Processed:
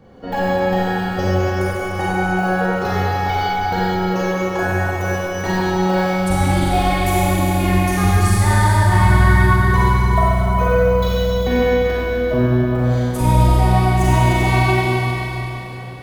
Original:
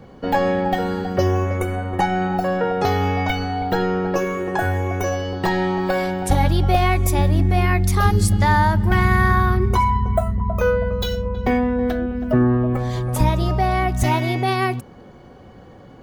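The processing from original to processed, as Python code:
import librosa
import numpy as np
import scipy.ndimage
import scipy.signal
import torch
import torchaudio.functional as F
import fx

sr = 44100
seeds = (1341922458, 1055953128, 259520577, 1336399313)

y = fx.steep_highpass(x, sr, hz=160.0, slope=72, at=(7.64, 8.04))
y = y + 10.0 ** (-10.5 / 20.0) * np.pad(y, (int(398 * sr / 1000.0), 0))[:len(y)]
y = fx.rev_schroeder(y, sr, rt60_s=3.7, comb_ms=33, drr_db=-8.0)
y = F.gain(torch.from_numpy(y), -6.0).numpy()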